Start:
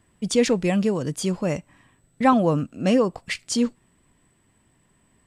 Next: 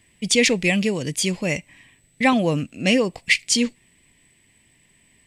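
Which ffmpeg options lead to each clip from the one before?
ffmpeg -i in.wav -af "highshelf=frequency=1700:width_type=q:width=3:gain=7.5" out.wav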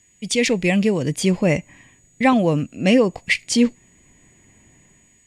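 ffmpeg -i in.wav -filter_complex "[0:a]aeval=exprs='val(0)+0.00251*sin(2*PI*6800*n/s)':channel_layout=same,acrossover=split=1600[link_01][link_02];[link_01]dynaudnorm=framelen=130:gausssize=7:maxgain=13.5dB[link_03];[link_03][link_02]amix=inputs=2:normalize=0,volume=-4dB" out.wav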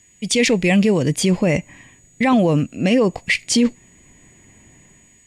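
ffmpeg -i in.wav -af "alimiter=limit=-11.5dB:level=0:latency=1:release=11,volume=4dB" out.wav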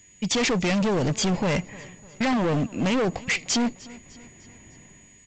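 ffmpeg -i in.wav -af "aresample=16000,asoftclip=type=hard:threshold=-21dB,aresample=44100,aecho=1:1:301|602|903|1204:0.0891|0.0446|0.0223|0.0111" out.wav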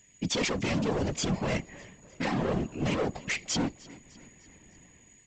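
ffmpeg -i in.wav -af "afftfilt=real='hypot(re,im)*cos(2*PI*random(0))':imag='hypot(re,im)*sin(2*PI*random(1))':win_size=512:overlap=0.75" out.wav

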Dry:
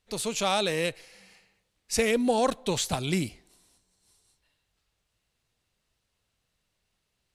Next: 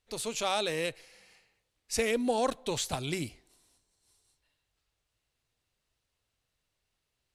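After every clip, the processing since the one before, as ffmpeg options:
ffmpeg -i in.wav -af "equalizer=frequency=190:width_type=o:width=0.21:gain=-11,volume=-4dB" out.wav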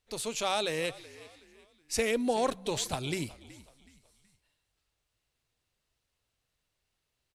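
ffmpeg -i in.wav -filter_complex "[0:a]asplit=4[link_01][link_02][link_03][link_04];[link_02]adelay=373,afreqshift=-56,volume=-19dB[link_05];[link_03]adelay=746,afreqshift=-112,volume=-27.4dB[link_06];[link_04]adelay=1119,afreqshift=-168,volume=-35.8dB[link_07];[link_01][link_05][link_06][link_07]amix=inputs=4:normalize=0" out.wav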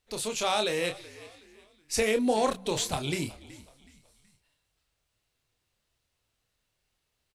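ffmpeg -i in.wav -filter_complex "[0:a]asplit=2[link_01][link_02];[link_02]adelay=28,volume=-6.5dB[link_03];[link_01][link_03]amix=inputs=2:normalize=0,volume=2dB" out.wav

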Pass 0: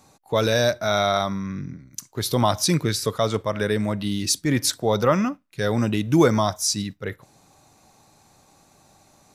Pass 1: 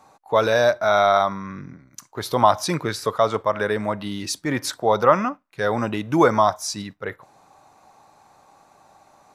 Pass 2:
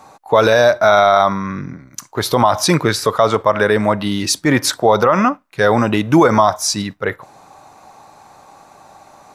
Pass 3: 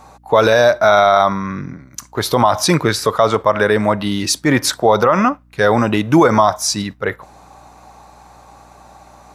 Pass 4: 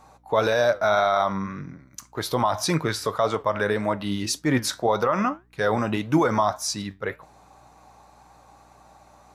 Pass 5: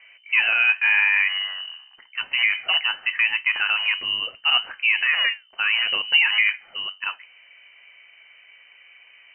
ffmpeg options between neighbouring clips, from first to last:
ffmpeg -i in.wav -af "equalizer=frequency=960:width=0.51:gain=15,volume=-7.5dB" out.wav
ffmpeg -i in.wav -af "alimiter=level_in=11dB:limit=-1dB:release=50:level=0:latency=1,volume=-1dB" out.wav
ffmpeg -i in.wav -af "aeval=exprs='val(0)+0.00355*(sin(2*PI*60*n/s)+sin(2*PI*2*60*n/s)/2+sin(2*PI*3*60*n/s)/3+sin(2*PI*4*60*n/s)/4+sin(2*PI*5*60*n/s)/5)':channel_layout=same" out.wav
ffmpeg -i in.wav -af "flanger=delay=6.2:depth=4.2:regen=76:speed=1.8:shape=sinusoidal,volume=-5dB" out.wav
ffmpeg -i in.wav -af "bandreject=frequency=500:width=12,lowpass=frequency=2600:width_type=q:width=0.5098,lowpass=frequency=2600:width_type=q:width=0.6013,lowpass=frequency=2600:width_type=q:width=0.9,lowpass=frequency=2600:width_type=q:width=2.563,afreqshift=-3100,volume=2dB" out.wav

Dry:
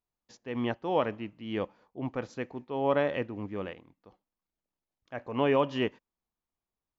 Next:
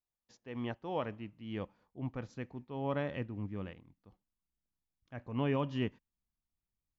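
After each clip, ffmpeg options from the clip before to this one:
ffmpeg -i in.wav -af "asubboost=boost=4.5:cutoff=220,volume=-8dB" out.wav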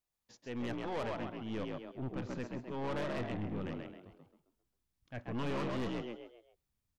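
ffmpeg -i in.wav -filter_complex "[0:a]asplit=6[link_01][link_02][link_03][link_04][link_05][link_06];[link_02]adelay=133,afreqshift=58,volume=-4.5dB[link_07];[link_03]adelay=266,afreqshift=116,volume=-13.1dB[link_08];[link_04]adelay=399,afreqshift=174,volume=-21.8dB[link_09];[link_05]adelay=532,afreqshift=232,volume=-30.4dB[link_10];[link_06]adelay=665,afreqshift=290,volume=-39dB[link_11];[link_01][link_07][link_08][link_09][link_10][link_11]amix=inputs=6:normalize=0,aeval=exprs='(tanh(89.1*val(0)+0.45)-tanh(0.45))/89.1':channel_layout=same,volume=5dB" out.wav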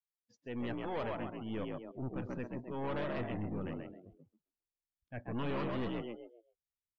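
ffmpeg -i in.wav -af "afftdn=noise_reduction=22:noise_floor=-53" out.wav

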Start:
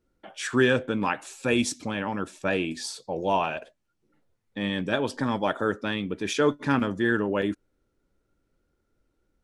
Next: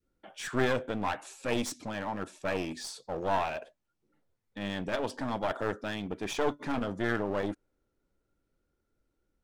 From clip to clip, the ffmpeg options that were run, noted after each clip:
ffmpeg -i in.wav -af "aeval=exprs='clip(val(0),-1,0.0266)':channel_layout=same,adynamicequalizer=threshold=0.00891:dfrequency=770:dqfactor=0.96:tfrequency=770:tqfactor=0.96:attack=5:release=100:ratio=0.375:range=2.5:mode=boostabove:tftype=bell,volume=-5.5dB" out.wav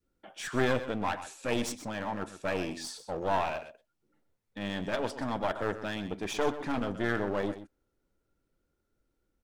ffmpeg -i in.wav -af "aecho=1:1:126:0.237" out.wav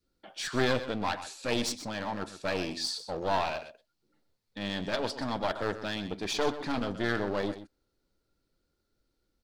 ffmpeg -i in.wav -af "equalizer=frequency=4400:width_type=o:width=0.61:gain=11.5" out.wav

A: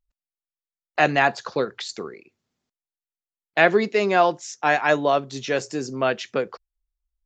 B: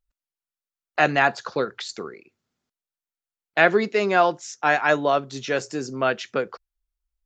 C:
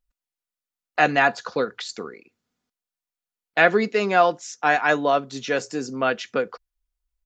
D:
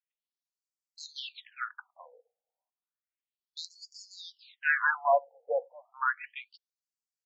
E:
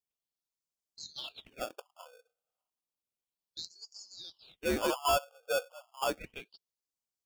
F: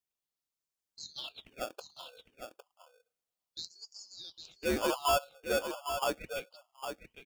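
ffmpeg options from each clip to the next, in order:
ffmpeg -i in.wav -af "equalizer=frequency=1400:width=3.8:gain=4.5,volume=-1dB" out.wav
ffmpeg -i in.wav -af "aecho=1:1:4.1:0.31" out.wav
ffmpeg -i in.wav -af "aeval=exprs='0.891*(cos(1*acos(clip(val(0)/0.891,-1,1)))-cos(1*PI/2))+0.282*(cos(2*acos(clip(val(0)/0.891,-1,1)))-cos(2*PI/2))+0.0562*(cos(4*acos(clip(val(0)/0.891,-1,1)))-cos(4*PI/2))+0.0447*(cos(6*acos(clip(val(0)/0.891,-1,1)))-cos(6*PI/2))':channel_layout=same,afftfilt=real='re*between(b*sr/1024,610*pow(6300/610,0.5+0.5*sin(2*PI*0.32*pts/sr))/1.41,610*pow(6300/610,0.5+0.5*sin(2*PI*0.32*pts/sr))*1.41)':imag='im*between(b*sr/1024,610*pow(6300/610,0.5+0.5*sin(2*PI*0.32*pts/sr))/1.41,610*pow(6300/610,0.5+0.5*sin(2*PI*0.32*pts/sr))*1.41)':win_size=1024:overlap=0.75,volume=-2.5dB" out.wav
ffmpeg -i in.wav -filter_complex "[0:a]acrossover=split=2400[link_01][link_02];[link_01]acrusher=samples=22:mix=1:aa=0.000001[link_03];[link_03][link_02]amix=inputs=2:normalize=0,asoftclip=type=tanh:threshold=-22.5dB" out.wav
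ffmpeg -i in.wav -af "aecho=1:1:807:0.398" out.wav

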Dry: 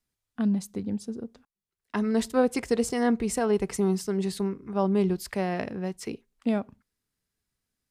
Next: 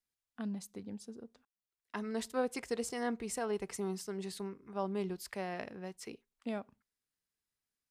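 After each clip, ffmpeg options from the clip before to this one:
ffmpeg -i in.wav -af "lowshelf=frequency=350:gain=-9,volume=-7.5dB" out.wav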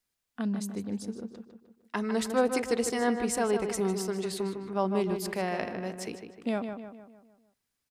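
ffmpeg -i in.wav -filter_complex "[0:a]asplit=2[link_01][link_02];[link_02]adelay=153,lowpass=frequency=3200:poles=1,volume=-7dB,asplit=2[link_03][link_04];[link_04]adelay=153,lowpass=frequency=3200:poles=1,volume=0.49,asplit=2[link_05][link_06];[link_06]adelay=153,lowpass=frequency=3200:poles=1,volume=0.49,asplit=2[link_07][link_08];[link_08]adelay=153,lowpass=frequency=3200:poles=1,volume=0.49,asplit=2[link_09][link_10];[link_10]adelay=153,lowpass=frequency=3200:poles=1,volume=0.49,asplit=2[link_11][link_12];[link_12]adelay=153,lowpass=frequency=3200:poles=1,volume=0.49[link_13];[link_01][link_03][link_05][link_07][link_09][link_11][link_13]amix=inputs=7:normalize=0,volume=8dB" out.wav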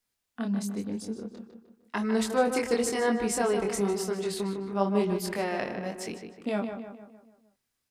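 ffmpeg -i in.wav -af "flanger=delay=22.5:depth=3.5:speed=0.96,volume=4.5dB" out.wav

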